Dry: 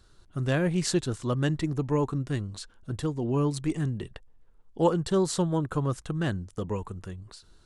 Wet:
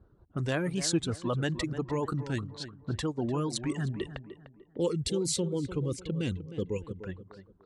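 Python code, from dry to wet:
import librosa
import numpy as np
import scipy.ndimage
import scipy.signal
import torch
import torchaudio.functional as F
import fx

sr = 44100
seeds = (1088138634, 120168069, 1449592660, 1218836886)

p1 = fx.hpss(x, sr, part='percussive', gain_db=5)
p2 = fx.dereverb_blind(p1, sr, rt60_s=1.5)
p3 = fx.spec_box(p2, sr, start_s=4.36, length_s=2.67, low_hz=550.0, high_hz=2000.0, gain_db=-15)
p4 = fx.over_compress(p3, sr, threshold_db=-31.0, ratio=-1.0)
p5 = p3 + F.gain(torch.from_numpy(p4), 0.0).numpy()
p6 = fx.env_lowpass(p5, sr, base_hz=600.0, full_db=-19.5)
p7 = scipy.signal.sosfilt(scipy.signal.butter(2, 50.0, 'highpass', fs=sr, output='sos'), p6)
p8 = p7 + fx.echo_tape(p7, sr, ms=300, feedback_pct=39, wet_db=-10.5, lp_hz=1700.0, drive_db=4.0, wow_cents=17, dry=0)
p9 = fx.record_warp(p8, sr, rpm=45.0, depth_cents=100.0)
y = F.gain(torch.from_numpy(p9), -7.5).numpy()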